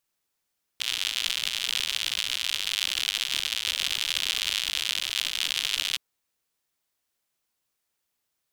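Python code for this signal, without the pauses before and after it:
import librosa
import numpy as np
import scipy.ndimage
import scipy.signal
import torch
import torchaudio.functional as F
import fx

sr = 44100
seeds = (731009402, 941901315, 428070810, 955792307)

y = fx.rain(sr, seeds[0], length_s=5.17, drops_per_s=110.0, hz=3200.0, bed_db=-28)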